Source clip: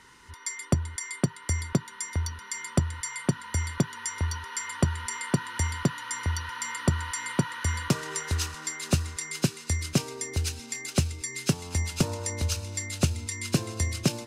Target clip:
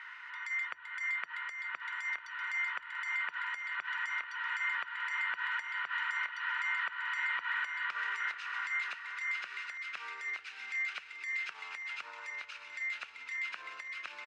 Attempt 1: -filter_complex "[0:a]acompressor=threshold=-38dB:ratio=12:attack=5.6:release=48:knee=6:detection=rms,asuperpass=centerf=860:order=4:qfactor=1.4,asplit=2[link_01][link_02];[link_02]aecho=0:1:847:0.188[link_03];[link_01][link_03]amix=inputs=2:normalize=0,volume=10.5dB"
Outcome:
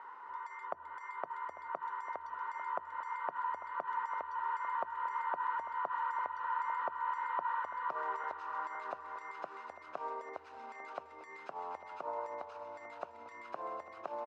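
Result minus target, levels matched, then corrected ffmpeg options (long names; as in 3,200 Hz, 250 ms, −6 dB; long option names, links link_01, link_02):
1,000 Hz band +11.0 dB; echo 614 ms early
-filter_complex "[0:a]acompressor=threshold=-38dB:ratio=12:attack=5.6:release=48:knee=6:detection=rms,asuperpass=centerf=1800:order=4:qfactor=1.4,asplit=2[link_01][link_02];[link_02]aecho=0:1:1461:0.188[link_03];[link_01][link_03]amix=inputs=2:normalize=0,volume=10.5dB"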